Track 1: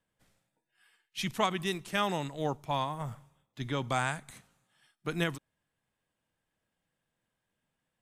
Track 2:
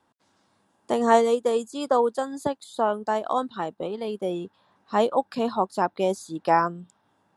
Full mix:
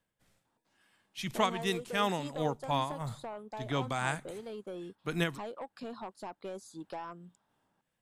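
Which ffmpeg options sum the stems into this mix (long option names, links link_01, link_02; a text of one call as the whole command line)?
ffmpeg -i stem1.wav -i stem2.wav -filter_complex "[0:a]tremolo=f=2.9:d=0.49,volume=1dB[link_01];[1:a]acompressor=threshold=-25dB:ratio=5,asoftclip=type=tanh:threshold=-24dB,adelay=450,volume=-10dB[link_02];[link_01][link_02]amix=inputs=2:normalize=0" out.wav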